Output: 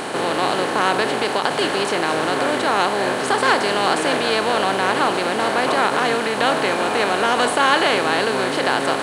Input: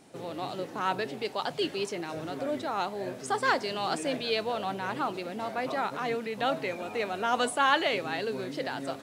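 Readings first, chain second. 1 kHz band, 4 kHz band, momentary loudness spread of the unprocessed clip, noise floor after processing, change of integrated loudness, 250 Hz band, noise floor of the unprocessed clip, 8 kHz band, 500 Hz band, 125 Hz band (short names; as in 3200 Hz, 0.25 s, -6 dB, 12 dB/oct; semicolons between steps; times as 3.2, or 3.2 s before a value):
+12.0 dB, +13.0 dB, 9 LU, -23 dBFS, +12.0 dB, +11.5 dB, -44 dBFS, +14.0 dB, +12.0 dB, +10.0 dB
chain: per-bin compression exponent 0.4; crackle 20/s -52 dBFS; ending taper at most 110 dB/s; gain +5 dB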